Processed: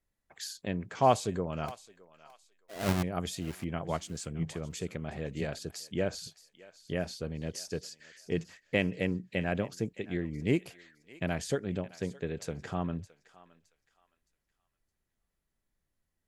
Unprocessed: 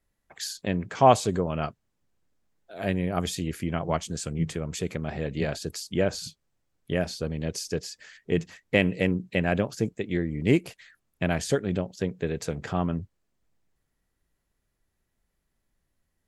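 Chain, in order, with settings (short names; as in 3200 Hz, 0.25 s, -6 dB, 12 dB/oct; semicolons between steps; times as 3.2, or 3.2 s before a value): 1.68–3.03 half-waves squared off; thinning echo 0.616 s, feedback 31%, high-pass 1000 Hz, level -16 dB; gain -6.5 dB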